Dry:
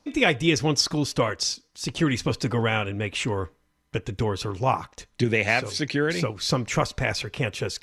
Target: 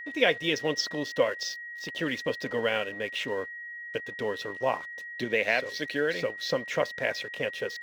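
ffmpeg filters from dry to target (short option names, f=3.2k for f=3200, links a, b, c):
-af "highpass=350,equalizer=f=350:t=q:w=4:g=-7,equalizer=f=550:t=q:w=4:g=5,equalizer=f=800:t=q:w=4:g=-8,equalizer=f=1.2k:t=q:w=4:g=-10,equalizer=f=2.4k:t=q:w=4:g=-5,equalizer=f=4.5k:t=q:w=4:g=-6,lowpass=f=4.9k:w=0.5412,lowpass=f=4.9k:w=1.3066,aeval=exprs='sgn(val(0))*max(abs(val(0))-0.00355,0)':c=same,aeval=exprs='val(0)+0.0126*sin(2*PI*1900*n/s)':c=same"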